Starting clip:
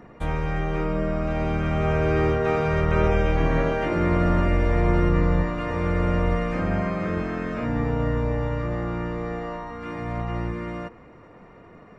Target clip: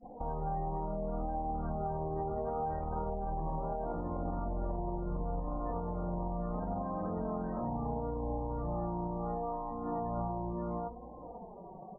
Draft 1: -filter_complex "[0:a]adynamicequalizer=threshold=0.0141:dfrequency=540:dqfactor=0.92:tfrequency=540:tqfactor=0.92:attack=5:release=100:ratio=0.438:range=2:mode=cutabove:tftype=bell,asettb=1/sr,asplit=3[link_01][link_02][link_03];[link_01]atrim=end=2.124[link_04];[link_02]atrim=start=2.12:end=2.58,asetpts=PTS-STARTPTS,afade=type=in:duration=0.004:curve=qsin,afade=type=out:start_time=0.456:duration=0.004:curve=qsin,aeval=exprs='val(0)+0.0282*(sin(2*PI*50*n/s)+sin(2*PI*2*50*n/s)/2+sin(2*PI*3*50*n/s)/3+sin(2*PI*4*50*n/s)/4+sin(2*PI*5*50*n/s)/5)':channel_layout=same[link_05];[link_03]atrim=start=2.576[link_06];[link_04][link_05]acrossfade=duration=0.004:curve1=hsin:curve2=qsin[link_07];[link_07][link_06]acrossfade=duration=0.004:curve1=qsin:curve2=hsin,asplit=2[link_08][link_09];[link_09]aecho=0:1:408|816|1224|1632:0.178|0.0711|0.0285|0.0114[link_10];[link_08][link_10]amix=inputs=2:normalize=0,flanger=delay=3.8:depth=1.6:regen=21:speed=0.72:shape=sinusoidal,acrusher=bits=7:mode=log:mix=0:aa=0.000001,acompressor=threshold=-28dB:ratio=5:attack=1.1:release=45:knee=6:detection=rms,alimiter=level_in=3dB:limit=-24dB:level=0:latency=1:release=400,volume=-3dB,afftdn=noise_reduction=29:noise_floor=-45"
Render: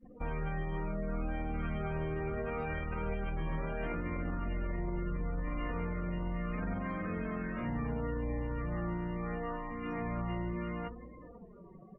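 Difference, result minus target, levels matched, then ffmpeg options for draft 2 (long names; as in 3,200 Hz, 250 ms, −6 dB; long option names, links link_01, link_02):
1,000 Hz band −5.5 dB
-filter_complex "[0:a]adynamicequalizer=threshold=0.0141:dfrequency=540:dqfactor=0.92:tfrequency=540:tqfactor=0.92:attack=5:release=100:ratio=0.438:range=2:mode=cutabove:tftype=bell,asettb=1/sr,asplit=3[link_01][link_02][link_03];[link_01]atrim=end=2.124[link_04];[link_02]atrim=start=2.12:end=2.58,asetpts=PTS-STARTPTS,afade=type=in:duration=0.004:curve=qsin,afade=type=out:start_time=0.456:duration=0.004:curve=qsin,aeval=exprs='val(0)+0.0282*(sin(2*PI*50*n/s)+sin(2*PI*2*50*n/s)/2+sin(2*PI*3*50*n/s)/3+sin(2*PI*4*50*n/s)/4+sin(2*PI*5*50*n/s)/5)':channel_layout=same[link_05];[link_03]atrim=start=2.576[link_06];[link_04][link_05]acrossfade=duration=0.004:curve1=hsin:curve2=qsin[link_07];[link_07][link_06]acrossfade=duration=0.004:curve1=qsin:curve2=hsin,asplit=2[link_08][link_09];[link_09]aecho=0:1:408|816|1224|1632:0.178|0.0711|0.0285|0.0114[link_10];[link_08][link_10]amix=inputs=2:normalize=0,flanger=delay=3.8:depth=1.6:regen=21:speed=0.72:shape=sinusoidal,acrusher=bits=7:mode=log:mix=0:aa=0.000001,acompressor=threshold=-28dB:ratio=5:attack=1.1:release=45:knee=6:detection=rms,lowpass=frequency=810:width_type=q:width=4.1,alimiter=level_in=3dB:limit=-24dB:level=0:latency=1:release=400,volume=-3dB,afftdn=noise_reduction=29:noise_floor=-45"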